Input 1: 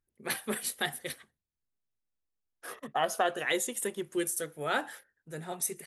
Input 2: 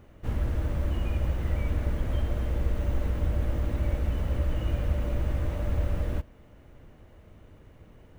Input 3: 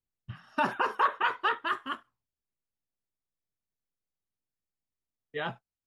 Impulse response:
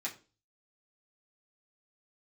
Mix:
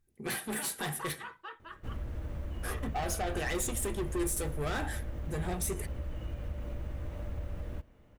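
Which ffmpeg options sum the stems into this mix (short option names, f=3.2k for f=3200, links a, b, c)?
-filter_complex "[0:a]lowshelf=f=290:g=11.5,alimiter=limit=-23.5dB:level=0:latency=1:release=17,asoftclip=type=tanh:threshold=-35.5dB,volume=2dB,asplit=2[a][b];[b]volume=-5dB[c];[1:a]acompressor=threshold=-28dB:ratio=2.5,adelay=1600,volume=-7dB[d];[2:a]aecho=1:1:6.1:0.61,volume=-19dB,asplit=2[e][f];[f]volume=-14.5dB[g];[3:a]atrim=start_sample=2205[h];[c][g]amix=inputs=2:normalize=0[i];[i][h]afir=irnorm=-1:irlink=0[j];[a][d][e][j]amix=inputs=4:normalize=0"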